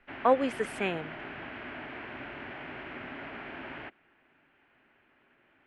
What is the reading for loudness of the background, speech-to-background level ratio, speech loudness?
−41.5 LKFS, 12.0 dB, −29.5 LKFS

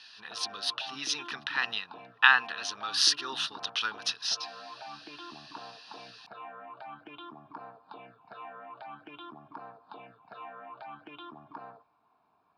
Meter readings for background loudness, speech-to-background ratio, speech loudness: −47.0 LKFS, 18.5 dB, −28.5 LKFS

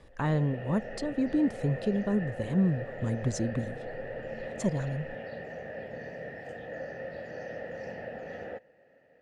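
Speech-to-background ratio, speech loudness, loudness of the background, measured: 9.5 dB, −30.5 LKFS, −40.0 LKFS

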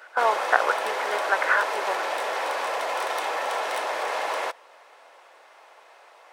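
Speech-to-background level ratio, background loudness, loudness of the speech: 2.0 dB, −27.5 LKFS, −25.5 LKFS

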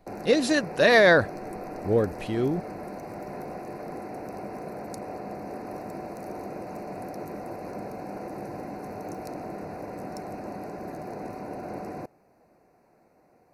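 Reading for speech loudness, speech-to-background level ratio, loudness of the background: −22.5 LKFS, 15.0 dB, −37.5 LKFS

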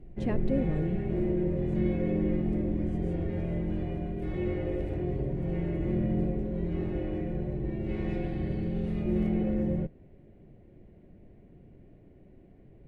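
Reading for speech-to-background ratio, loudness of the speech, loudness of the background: −1.5 dB, −33.0 LKFS, −31.5 LKFS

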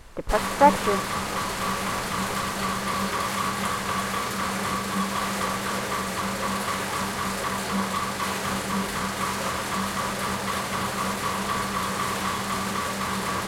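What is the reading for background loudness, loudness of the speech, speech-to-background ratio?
−27.0 LKFS, −23.0 LKFS, 4.0 dB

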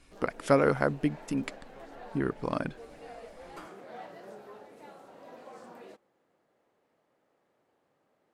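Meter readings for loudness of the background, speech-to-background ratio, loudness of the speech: −49.0 LKFS, 19.0 dB, −30.0 LKFS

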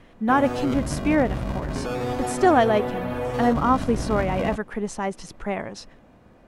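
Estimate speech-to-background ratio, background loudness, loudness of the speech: 5.5 dB, −29.0 LKFS, −23.5 LKFS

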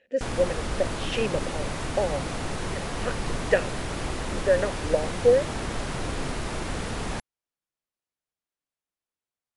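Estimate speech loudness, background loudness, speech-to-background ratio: −27.5 LKFS, −32.0 LKFS, 4.5 dB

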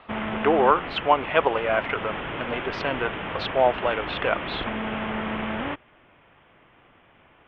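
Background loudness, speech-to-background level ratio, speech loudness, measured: −31.0 LKFS, 6.5 dB, −24.5 LKFS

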